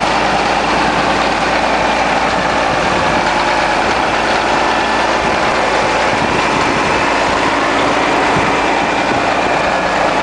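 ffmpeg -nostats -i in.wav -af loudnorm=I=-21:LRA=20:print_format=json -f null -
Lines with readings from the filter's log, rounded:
"input_i" : "-12.9",
"input_tp" : "-1.6",
"input_lra" : "0.3",
"input_thresh" : "-22.9",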